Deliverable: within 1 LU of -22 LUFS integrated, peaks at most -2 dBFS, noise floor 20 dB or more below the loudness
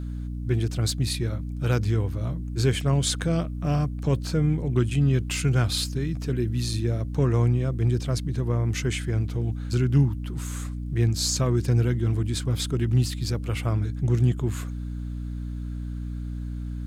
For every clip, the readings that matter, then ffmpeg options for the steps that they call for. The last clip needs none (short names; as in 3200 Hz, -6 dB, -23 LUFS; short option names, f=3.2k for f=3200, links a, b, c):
hum 60 Hz; harmonics up to 300 Hz; hum level -29 dBFS; loudness -26.0 LUFS; peak -9.5 dBFS; loudness target -22.0 LUFS
-> -af "bandreject=f=60:t=h:w=4,bandreject=f=120:t=h:w=4,bandreject=f=180:t=h:w=4,bandreject=f=240:t=h:w=4,bandreject=f=300:t=h:w=4"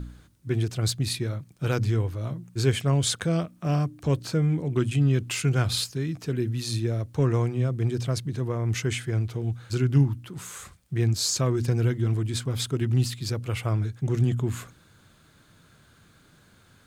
hum none; loudness -26.5 LUFS; peak -9.5 dBFS; loudness target -22.0 LUFS
-> -af "volume=4.5dB"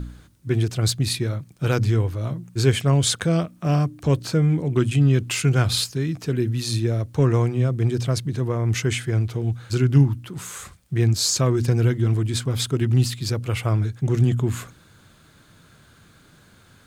loudness -22.0 LUFS; peak -5.0 dBFS; noise floor -54 dBFS